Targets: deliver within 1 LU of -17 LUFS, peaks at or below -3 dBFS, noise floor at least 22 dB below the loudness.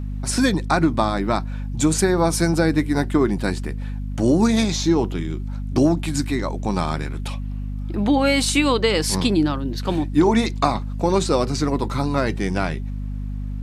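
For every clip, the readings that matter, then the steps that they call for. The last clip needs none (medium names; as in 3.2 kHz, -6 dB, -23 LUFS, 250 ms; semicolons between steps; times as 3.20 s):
hum 50 Hz; highest harmonic 250 Hz; hum level -25 dBFS; loudness -21.0 LUFS; peak level -2.0 dBFS; loudness target -17.0 LUFS
-> hum notches 50/100/150/200/250 Hz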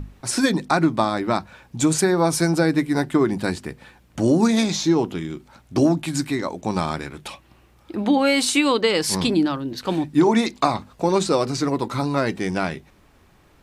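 hum not found; loudness -21.0 LUFS; peak level -3.0 dBFS; loudness target -17.0 LUFS
-> trim +4 dB; peak limiter -3 dBFS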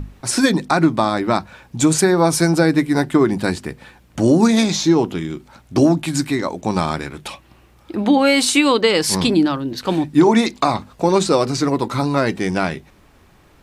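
loudness -17.0 LUFS; peak level -3.0 dBFS; noise floor -51 dBFS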